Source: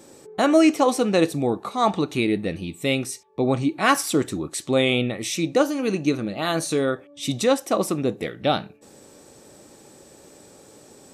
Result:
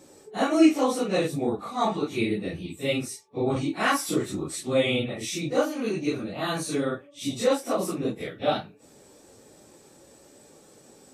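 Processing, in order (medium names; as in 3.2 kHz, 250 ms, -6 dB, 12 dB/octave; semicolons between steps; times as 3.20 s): phase randomisation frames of 100 ms; 3.56–4.56 s: three bands compressed up and down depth 40%; trim -4.5 dB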